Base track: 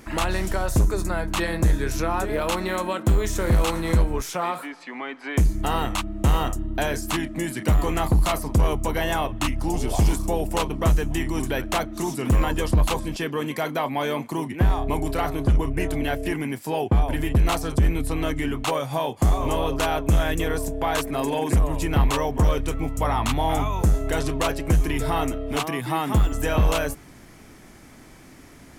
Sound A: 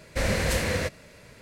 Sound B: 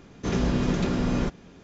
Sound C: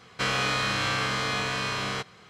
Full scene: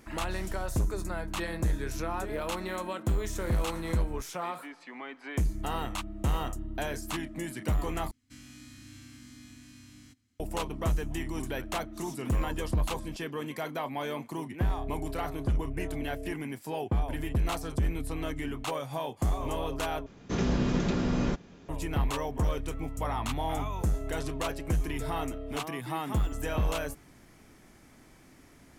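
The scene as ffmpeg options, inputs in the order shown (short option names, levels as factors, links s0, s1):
-filter_complex "[0:a]volume=0.355[s0];[3:a]firequalizer=gain_entry='entry(100,0);entry(170,-23);entry(260,9);entry(400,-30);entry(780,-27);entry(1100,-29);entry(1800,-18);entry(3600,-17);entry(6400,-6);entry(13000,3)':delay=0.05:min_phase=1[s1];[s0]asplit=3[s2][s3][s4];[s2]atrim=end=8.114[s5];[s1]atrim=end=2.29,asetpts=PTS-STARTPTS,volume=0.282[s6];[s3]atrim=start=10.396:end=20.064[s7];[2:a]atrim=end=1.63,asetpts=PTS-STARTPTS,volume=0.708[s8];[s4]atrim=start=21.686[s9];[s5][s6]acrossfade=d=0.004:c1=hsin:c2=hsin[s10];[s10][s7]acrossfade=d=0.004:c1=hsin:c2=hsin[s11];[s11][s8]acrossfade=d=0.004:c1=hsin:c2=hsin[s12];[s12][s9]acrossfade=d=0.004:c1=hsin:c2=hsin"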